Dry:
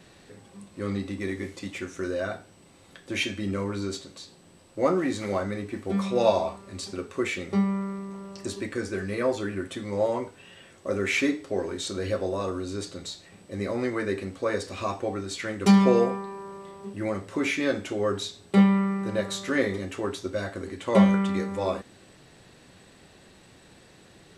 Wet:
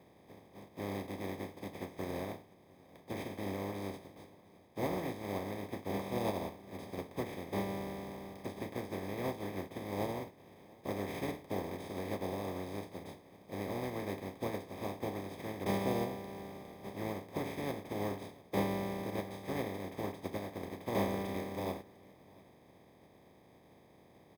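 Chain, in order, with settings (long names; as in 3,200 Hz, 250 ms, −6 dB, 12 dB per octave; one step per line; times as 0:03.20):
compressing power law on the bin magnitudes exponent 0.18
high-pass filter 84 Hz
downward compressor 2 to 1, threshold −32 dBFS, peak gain reduction 11 dB
moving average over 31 samples
on a send: single-tap delay 696 ms −24 dB
on the sum: bad sample-rate conversion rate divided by 3×, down filtered, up hold
level +3.5 dB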